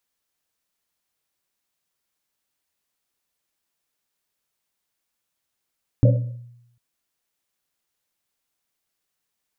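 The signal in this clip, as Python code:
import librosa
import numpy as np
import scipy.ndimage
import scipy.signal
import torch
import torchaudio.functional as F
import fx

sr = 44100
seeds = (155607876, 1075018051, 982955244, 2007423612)

y = fx.risset_drum(sr, seeds[0], length_s=0.75, hz=120.0, decay_s=0.86, noise_hz=540.0, noise_width_hz=120.0, noise_pct=20)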